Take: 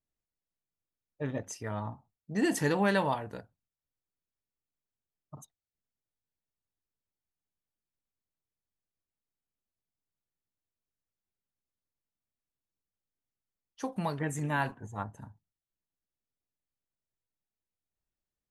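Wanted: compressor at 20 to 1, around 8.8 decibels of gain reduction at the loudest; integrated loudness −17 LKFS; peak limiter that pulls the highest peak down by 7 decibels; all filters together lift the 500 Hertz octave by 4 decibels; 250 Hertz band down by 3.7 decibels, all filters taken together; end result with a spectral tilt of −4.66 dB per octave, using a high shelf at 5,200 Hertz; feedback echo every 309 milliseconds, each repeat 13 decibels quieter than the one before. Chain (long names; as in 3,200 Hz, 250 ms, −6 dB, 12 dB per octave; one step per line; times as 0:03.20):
parametric band 250 Hz −8 dB
parametric band 500 Hz +7 dB
high-shelf EQ 5,200 Hz +7.5 dB
downward compressor 20 to 1, threshold −30 dBFS
brickwall limiter −27.5 dBFS
repeating echo 309 ms, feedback 22%, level −13 dB
level +22.5 dB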